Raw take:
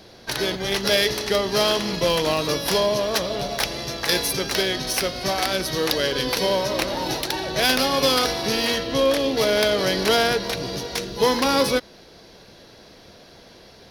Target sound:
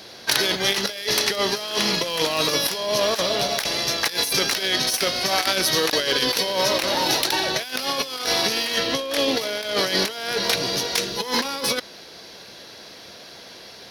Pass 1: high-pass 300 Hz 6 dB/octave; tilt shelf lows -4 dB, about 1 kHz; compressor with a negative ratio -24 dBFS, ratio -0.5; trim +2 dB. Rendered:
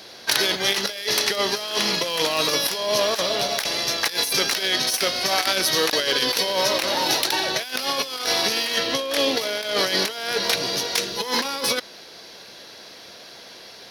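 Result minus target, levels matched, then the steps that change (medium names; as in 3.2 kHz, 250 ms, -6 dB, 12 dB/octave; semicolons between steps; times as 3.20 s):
125 Hz band -4.0 dB
change: high-pass 150 Hz 6 dB/octave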